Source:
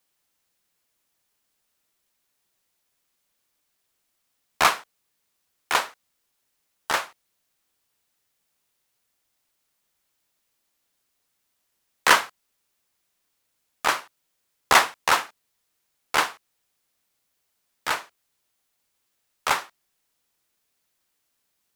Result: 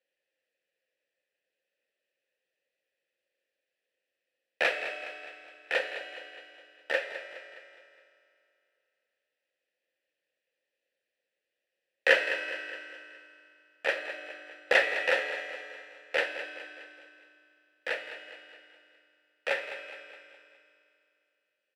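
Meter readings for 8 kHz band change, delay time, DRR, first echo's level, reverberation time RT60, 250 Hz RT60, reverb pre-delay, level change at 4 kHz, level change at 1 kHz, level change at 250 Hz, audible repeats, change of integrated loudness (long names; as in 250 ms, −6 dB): −21.0 dB, 208 ms, 5.0 dB, −12.0 dB, 2.5 s, 2.8 s, 3 ms, −8.5 dB, −16.0 dB, −8.5 dB, 4, −7.5 dB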